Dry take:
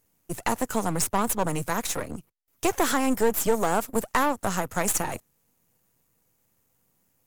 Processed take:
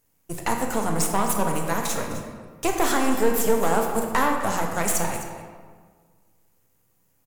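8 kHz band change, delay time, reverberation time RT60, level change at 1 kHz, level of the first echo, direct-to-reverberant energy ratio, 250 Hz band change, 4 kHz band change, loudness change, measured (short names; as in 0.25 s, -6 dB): +1.0 dB, 0.258 s, 1.6 s, +2.5 dB, -14.0 dB, 1.5 dB, +2.0 dB, +1.5 dB, +1.5 dB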